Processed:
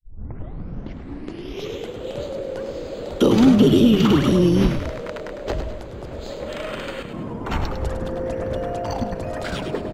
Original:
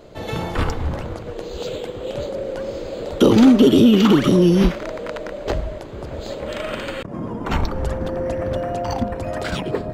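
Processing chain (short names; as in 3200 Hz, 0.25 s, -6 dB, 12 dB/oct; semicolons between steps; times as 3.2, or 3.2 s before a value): tape start at the beginning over 1.93 s; frequency-shifting echo 0.103 s, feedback 49%, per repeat -55 Hz, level -8 dB; gain -3 dB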